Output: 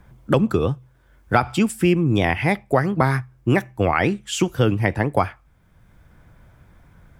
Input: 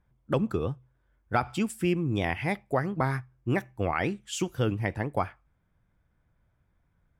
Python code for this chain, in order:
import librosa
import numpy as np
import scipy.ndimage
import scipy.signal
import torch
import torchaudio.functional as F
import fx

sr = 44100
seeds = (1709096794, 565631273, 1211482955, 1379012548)

y = fx.band_squash(x, sr, depth_pct=40)
y = y * 10.0 ** (9.0 / 20.0)